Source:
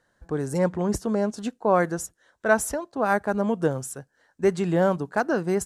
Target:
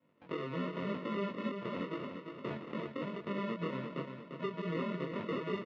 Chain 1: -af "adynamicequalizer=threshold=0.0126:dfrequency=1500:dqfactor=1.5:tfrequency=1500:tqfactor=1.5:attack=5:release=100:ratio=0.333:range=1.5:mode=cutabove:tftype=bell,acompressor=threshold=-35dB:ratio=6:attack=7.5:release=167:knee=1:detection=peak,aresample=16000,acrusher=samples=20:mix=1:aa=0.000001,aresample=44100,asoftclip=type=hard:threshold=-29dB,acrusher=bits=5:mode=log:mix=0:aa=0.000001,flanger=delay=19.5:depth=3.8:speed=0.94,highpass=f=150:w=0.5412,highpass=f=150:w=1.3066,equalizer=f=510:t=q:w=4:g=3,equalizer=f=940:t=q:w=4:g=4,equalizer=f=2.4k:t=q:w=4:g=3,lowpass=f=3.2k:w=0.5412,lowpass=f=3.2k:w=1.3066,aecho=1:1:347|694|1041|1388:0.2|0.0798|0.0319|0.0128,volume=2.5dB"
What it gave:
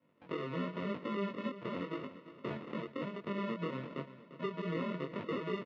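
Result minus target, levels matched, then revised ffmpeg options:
echo-to-direct -7.5 dB
-af "adynamicequalizer=threshold=0.0126:dfrequency=1500:dqfactor=1.5:tfrequency=1500:tqfactor=1.5:attack=5:release=100:ratio=0.333:range=1.5:mode=cutabove:tftype=bell,acompressor=threshold=-35dB:ratio=6:attack=7.5:release=167:knee=1:detection=peak,aresample=16000,acrusher=samples=20:mix=1:aa=0.000001,aresample=44100,asoftclip=type=hard:threshold=-29dB,acrusher=bits=5:mode=log:mix=0:aa=0.000001,flanger=delay=19.5:depth=3.8:speed=0.94,highpass=f=150:w=0.5412,highpass=f=150:w=1.3066,equalizer=f=510:t=q:w=4:g=3,equalizer=f=940:t=q:w=4:g=4,equalizer=f=2.4k:t=q:w=4:g=3,lowpass=f=3.2k:w=0.5412,lowpass=f=3.2k:w=1.3066,aecho=1:1:347|694|1041|1388|1735:0.473|0.189|0.0757|0.0303|0.0121,volume=2.5dB"

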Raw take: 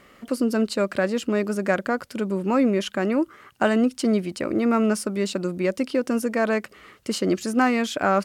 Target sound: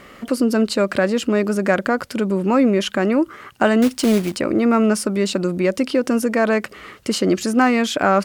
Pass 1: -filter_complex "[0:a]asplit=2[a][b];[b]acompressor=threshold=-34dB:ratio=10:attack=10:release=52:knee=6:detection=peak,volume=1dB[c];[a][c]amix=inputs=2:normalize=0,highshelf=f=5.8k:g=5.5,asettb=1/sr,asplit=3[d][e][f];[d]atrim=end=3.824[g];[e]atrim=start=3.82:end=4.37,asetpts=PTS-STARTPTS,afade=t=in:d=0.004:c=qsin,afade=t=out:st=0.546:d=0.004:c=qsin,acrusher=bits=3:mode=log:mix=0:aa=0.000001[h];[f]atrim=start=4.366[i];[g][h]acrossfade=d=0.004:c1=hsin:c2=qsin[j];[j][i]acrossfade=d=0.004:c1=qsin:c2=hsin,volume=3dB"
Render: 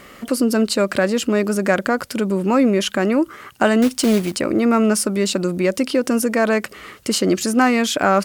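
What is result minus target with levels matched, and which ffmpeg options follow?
8000 Hz band +5.0 dB
-filter_complex "[0:a]asplit=2[a][b];[b]acompressor=threshold=-34dB:ratio=10:attack=10:release=52:knee=6:detection=peak,volume=1dB[c];[a][c]amix=inputs=2:normalize=0,highshelf=f=5.8k:g=-2.5,asettb=1/sr,asplit=3[d][e][f];[d]atrim=end=3.824[g];[e]atrim=start=3.82:end=4.37,asetpts=PTS-STARTPTS,afade=t=in:d=0.004:c=qsin,afade=t=out:st=0.546:d=0.004:c=qsin,acrusher=bits=3:mode=log:mix=0:aa=0.000001[h];[f]atrim=start=4.366[i];[g][h]acrossfade=d=0.004:c1=hsin:c2=qsin[j];[j][i]acrossfade=d=0.004:c1=qsin:c2=hsin,volume=3dB"

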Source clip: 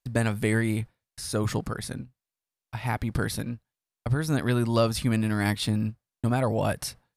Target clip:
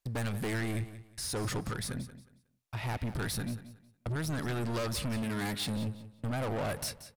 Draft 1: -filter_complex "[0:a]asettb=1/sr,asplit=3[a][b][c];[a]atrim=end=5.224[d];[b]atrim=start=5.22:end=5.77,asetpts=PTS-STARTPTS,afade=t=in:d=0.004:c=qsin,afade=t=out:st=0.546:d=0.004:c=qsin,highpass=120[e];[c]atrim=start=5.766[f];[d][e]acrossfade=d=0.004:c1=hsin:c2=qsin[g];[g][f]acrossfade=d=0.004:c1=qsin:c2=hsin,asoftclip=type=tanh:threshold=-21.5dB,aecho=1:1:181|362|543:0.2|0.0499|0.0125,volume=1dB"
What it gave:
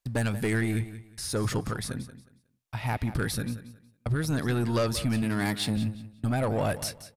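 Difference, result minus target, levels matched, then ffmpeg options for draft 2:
soft clip: distortion -7 dB
-filter_complex "[0:a]asettb=1/sr,asplit=3[a][b][c];[a]atrim=end=5.224[d];[b]atrim=start=5.22:end=5.77,asetpts=PTS-STARTPTS,afade=t=in:d=0.004:c=qsin,afade=t=out:st=0.546:d=0.004:c=qsin,highpass=120[e];[c]atrim=start=5.766[f];[d][e]acrossfade=d=0.004:c1=hsin:c2=qsin[g];[g][f]acrossfade=d=0.004:c1=qsin:c2=hsin,asoftclip=type=tanh:threshold=-32dB,aecho=1:1:181|362|543:0.2|0.0499|0.0125,volume=1dB"

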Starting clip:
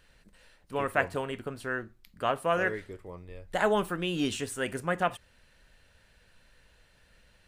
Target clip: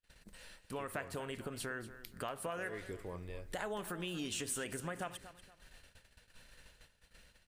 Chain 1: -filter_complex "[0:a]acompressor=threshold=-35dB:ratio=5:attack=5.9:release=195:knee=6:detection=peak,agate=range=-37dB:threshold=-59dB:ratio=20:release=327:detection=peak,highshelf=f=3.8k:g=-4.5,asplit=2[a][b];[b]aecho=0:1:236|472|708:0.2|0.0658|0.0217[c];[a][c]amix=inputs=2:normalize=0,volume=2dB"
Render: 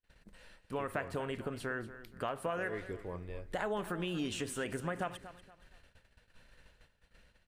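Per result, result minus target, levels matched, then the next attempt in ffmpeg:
8000 Hz band -8.5 dB; compressor: peak gain reduction -5 dB
-filter_complex "[0:a]acompressor=threshold=-35dB:ratio=5:attack=5.9:release=195:knee=6:detection=peak,agate=range=-37dB:threshold=-59dB:ratio=20:release=327:detection=peak,highshelf=f=3.8k:g=7,asplit=2[a][b];[b]aecho=0:1:236|472|708:0.2|0.0658|0.0217[c];[a][c]amix=inputs=2:normalize=0,volume=2dB"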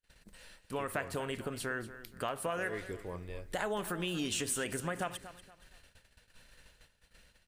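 compressor: peak gain reduction -5 dB
-filter_complex "[0:a]acompressor=threshold=-41.5dB:ratio=5:attack=5.9:release=195:knee=6:detection=peak,agate=range=-37dB:threshold=-59dB:ratio=20:release=327:detection=peak,highshelf=f=3.8k:g=7,asplit=2[a][b];[b]aecho=0:1:236|472|708:0.2|0.0658|0.0217[c];[a][c]amix=inputs=2:normalize=0,volume=2dB"

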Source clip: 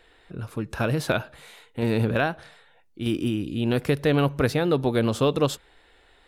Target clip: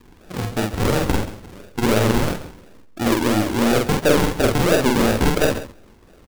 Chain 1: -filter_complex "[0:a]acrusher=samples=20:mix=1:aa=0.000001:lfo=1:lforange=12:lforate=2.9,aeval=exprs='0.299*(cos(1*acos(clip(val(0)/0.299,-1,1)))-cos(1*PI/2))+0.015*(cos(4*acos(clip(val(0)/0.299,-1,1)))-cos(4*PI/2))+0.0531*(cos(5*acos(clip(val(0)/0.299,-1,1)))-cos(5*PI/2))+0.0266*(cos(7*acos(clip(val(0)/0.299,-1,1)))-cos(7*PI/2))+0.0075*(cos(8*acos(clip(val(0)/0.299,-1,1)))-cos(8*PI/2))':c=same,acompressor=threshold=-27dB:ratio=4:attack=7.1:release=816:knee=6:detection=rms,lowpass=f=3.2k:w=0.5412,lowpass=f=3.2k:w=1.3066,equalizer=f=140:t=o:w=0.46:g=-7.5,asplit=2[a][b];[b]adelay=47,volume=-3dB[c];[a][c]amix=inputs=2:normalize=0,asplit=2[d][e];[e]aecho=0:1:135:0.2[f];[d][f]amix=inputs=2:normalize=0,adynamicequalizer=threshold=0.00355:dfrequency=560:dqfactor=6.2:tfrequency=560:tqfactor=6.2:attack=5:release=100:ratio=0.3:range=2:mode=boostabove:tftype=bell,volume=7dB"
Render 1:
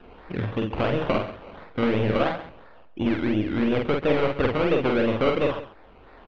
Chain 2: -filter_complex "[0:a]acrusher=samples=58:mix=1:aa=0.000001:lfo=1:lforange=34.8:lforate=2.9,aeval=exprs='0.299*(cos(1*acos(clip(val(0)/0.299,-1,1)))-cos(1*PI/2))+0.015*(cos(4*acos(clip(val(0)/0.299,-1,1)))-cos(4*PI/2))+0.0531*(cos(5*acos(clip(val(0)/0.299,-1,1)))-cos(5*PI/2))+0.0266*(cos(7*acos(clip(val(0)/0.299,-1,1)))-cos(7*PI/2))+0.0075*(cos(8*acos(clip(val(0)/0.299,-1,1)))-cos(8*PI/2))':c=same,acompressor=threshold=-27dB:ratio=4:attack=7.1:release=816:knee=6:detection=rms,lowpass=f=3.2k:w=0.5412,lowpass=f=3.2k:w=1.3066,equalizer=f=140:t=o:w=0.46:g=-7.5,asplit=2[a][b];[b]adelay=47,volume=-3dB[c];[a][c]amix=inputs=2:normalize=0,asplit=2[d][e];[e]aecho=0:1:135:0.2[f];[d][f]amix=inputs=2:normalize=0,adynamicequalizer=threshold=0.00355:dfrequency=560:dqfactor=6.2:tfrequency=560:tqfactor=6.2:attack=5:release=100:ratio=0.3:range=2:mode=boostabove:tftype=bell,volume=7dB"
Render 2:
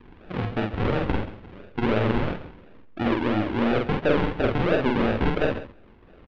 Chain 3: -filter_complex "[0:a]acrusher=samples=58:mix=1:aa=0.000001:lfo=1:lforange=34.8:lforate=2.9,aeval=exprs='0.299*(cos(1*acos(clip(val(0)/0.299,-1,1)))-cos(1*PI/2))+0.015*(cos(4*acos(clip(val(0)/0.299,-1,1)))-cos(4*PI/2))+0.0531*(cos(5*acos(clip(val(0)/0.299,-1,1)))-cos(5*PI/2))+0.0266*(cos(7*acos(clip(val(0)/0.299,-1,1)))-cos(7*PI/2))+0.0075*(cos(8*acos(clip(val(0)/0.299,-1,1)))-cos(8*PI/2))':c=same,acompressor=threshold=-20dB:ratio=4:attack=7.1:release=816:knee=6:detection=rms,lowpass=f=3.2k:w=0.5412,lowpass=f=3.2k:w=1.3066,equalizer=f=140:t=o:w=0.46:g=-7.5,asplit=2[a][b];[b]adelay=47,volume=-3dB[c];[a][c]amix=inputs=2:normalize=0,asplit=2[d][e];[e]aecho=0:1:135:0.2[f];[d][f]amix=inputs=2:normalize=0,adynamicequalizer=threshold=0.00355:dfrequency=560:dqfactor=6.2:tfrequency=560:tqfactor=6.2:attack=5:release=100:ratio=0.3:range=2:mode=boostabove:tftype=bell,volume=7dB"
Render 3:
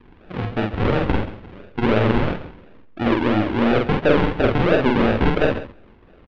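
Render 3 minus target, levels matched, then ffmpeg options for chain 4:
4000 Hz band -4.5 dB
-filter_complex "[0:a]acrusher=samples=58:mix=1:aa=0.000001:lfo=1:lforange=34.8:lforate=2.9,aeval=exprs='0.299*(cos(1*acos(clip(val(0)/0.299,-1,1)))-cos(1*PI/2))+0.015*(cos(4*acos(clip(val(0)/0.299,-1,1)))-cos(4*PI/2))+0.0531*(cos(5*acos(clip(val(0)/0.299,-1,1)))-cos(5*PI/2))+0.0266*(cos(7*acos(clip(val(0)/0.299,-1,1)))-cos(7*PI/2))+0.0075*(cos(8*acos(clip(val(0)/0.299,-1,1)))-cos(8*PI/2))':c=same,acompressor=threshold=-20dB:ratio=4:attack=7.1:release=816:knee=6:detection=rms,equalizer=f=140:t=o:w=0.46:g=-7.5,asplit=2[a][b];[b]adelay=47,volume=-3dB[c];[a][c]amix=inputs=2:normalize=0,asplit=2[d][e];[e]aecho=0:1:135:0.2[f];[d][f]amix=inputs=2:normalize=0,adynamicequalizer=threshold=0.00355:dfrequency=560:dqfactor=6.2:tfrequency=560:tqfactor=6.2:attack=5:release=100:ratio=0.3:range=2:mode=boostabove:tftype=bell,volume=7dB"

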